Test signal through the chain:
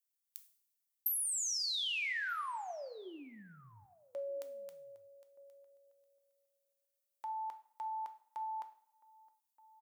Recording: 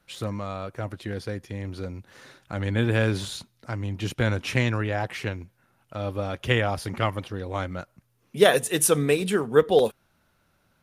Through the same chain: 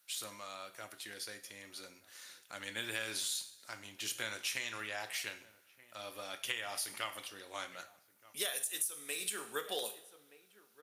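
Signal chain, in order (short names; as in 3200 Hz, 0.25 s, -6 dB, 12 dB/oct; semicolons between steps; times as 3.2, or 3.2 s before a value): differentiator; outdoor echo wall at 210 m, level -22 dB; in parallel at -7 dB: soft clip -22.5 dBFS; on the sum: two-slope reverb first 0.47 s, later 1.5 s, from -18 dB, DRR 7.5 dB; compressor 20:1, threshold -34 dBFS; gain +1 dB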